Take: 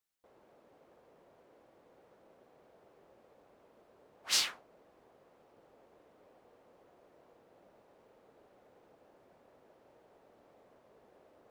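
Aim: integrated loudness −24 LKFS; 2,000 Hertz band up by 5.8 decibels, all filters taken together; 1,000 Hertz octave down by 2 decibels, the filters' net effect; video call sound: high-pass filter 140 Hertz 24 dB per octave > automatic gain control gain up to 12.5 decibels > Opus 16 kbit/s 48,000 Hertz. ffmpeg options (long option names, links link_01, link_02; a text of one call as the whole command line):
ffmpeg -i in.wav -af "highpass=frequency=140:width=0.5412,highpass=frequency=140:width=1.3066,equalizer=frequency=1000:width_type=o:gain=-6,equalizer=frequency=2000:width_type=o:gain=8.5,dynaudnorm=maxgain=12.5dB,volume=8dB" -ar 48000 -c:a libopus -b:a 16k out.opus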